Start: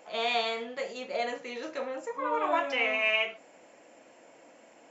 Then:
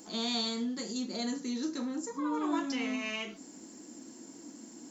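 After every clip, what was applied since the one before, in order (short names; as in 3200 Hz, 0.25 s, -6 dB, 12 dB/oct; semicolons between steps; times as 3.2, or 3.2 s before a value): EQ curve 140 Hz 0 dB, 230 Hz +10 dB, 340 Hz +5 dB, 560 Hz -19 dB, 930 Hz -10 dB, 1700 Hz -11 dB, 2500 Hz -17 dB, 4400 Hz +4 dB, 7600 Hz +7 dB; in parallel at +2.5 dB: compressor, threshold -45 dBFS, peak gain reduction 15.5 dB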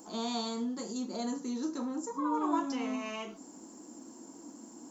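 graphic EQ 125/1000/2000/4000 Hz -4/+7/-8/-6 dB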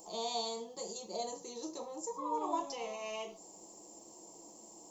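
fixed phaser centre 620 Hz, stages 4; gain +1.5 dB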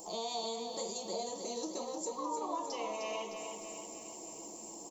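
compressor 3:1, threshold -43 dBFS, peak gain reduction 10.5 dB; feedback echo 0.306 s, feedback 58%, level -6.5 dB; gain +5.5 dB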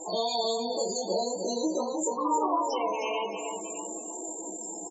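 loudest bins only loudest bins 32; doubler 16 ms -3 dB; gain +9 dB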